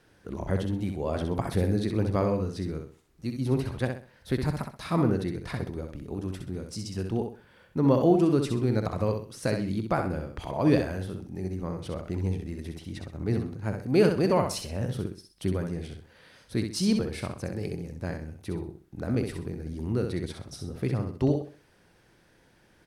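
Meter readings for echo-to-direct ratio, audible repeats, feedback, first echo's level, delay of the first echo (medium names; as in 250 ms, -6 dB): -5.5 dB, 3, 31%, -6.0 dB, 64 ms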